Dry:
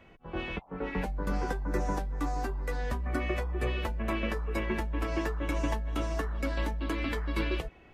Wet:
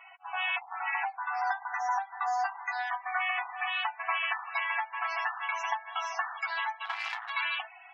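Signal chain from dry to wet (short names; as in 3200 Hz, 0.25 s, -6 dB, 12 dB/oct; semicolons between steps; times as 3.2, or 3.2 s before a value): in parallel at -0.5 dB: limiter -28 dBFS, peak gain reduction 10.5 dB; on the sum: loudest bins only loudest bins 64; 6.85–7.3 power-law curve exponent 2; brick-wall FIR high-pass 680 Hz; gain +4.5 dB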